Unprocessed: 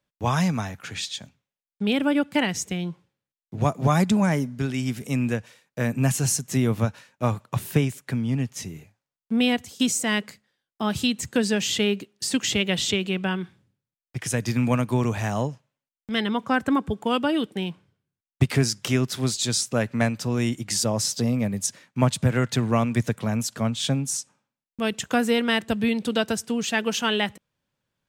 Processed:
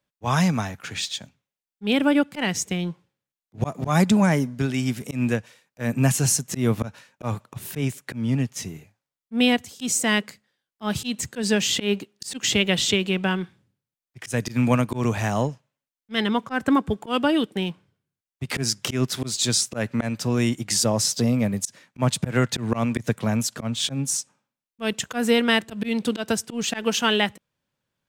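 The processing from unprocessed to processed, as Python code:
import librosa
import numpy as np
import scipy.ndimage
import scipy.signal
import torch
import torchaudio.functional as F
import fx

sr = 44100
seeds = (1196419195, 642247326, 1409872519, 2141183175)

p1 = fx.low_shelf(x, sr, hz=87.0, db=-3.5)
p2 = fx.auto_swell(p1, sr, attack_ms=119.0)
p3 = np.sign(p2) * np.maximum(np.abs(p2) - 10.0 ** (-40.5 / 20.0), 0.0)
y = p2 + F.gain(torch.from_numpy(p3), -7.0).numpy()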